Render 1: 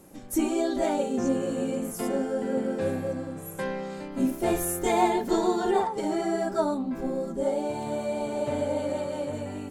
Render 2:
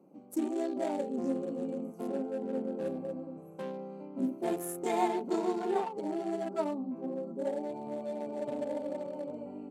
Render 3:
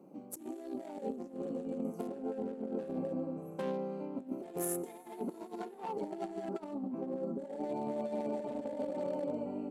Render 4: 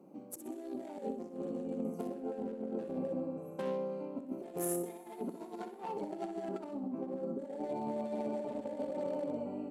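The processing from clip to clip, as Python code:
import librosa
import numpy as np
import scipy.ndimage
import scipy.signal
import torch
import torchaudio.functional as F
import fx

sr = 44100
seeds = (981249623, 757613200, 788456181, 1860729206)

y1 = fx.wiener(x, sr, points=25)
y1 = scipy.signal.sosfilt(scipy.signal.butter(4, 170.0, 'highpass', fs=sr, output='sos'), y1)
y1 = y1 * 10.0 ** (-6.0 / 20.0)
y2 = fx.over_compress(y1, sr, threshold_db=-38.0, ratio=-0.5)
y2 = fx.rev_plate(y2, sr, seeds[0], rt60_s=4.9, hf_ratio=0.75, predelay_ms=0, drr_db=19.0)
y3 = fx.echo_feedback(y2, sr, ms=63, feedback_pct=38, wet_db=-10.0)
y3 = y3 * 10.0 ** (-1.0 / 20.0)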